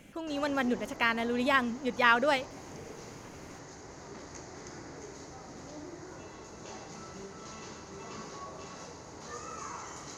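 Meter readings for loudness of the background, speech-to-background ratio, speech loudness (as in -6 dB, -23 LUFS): -45.5 LUFS, 17.0 dB, -28.5 LUFS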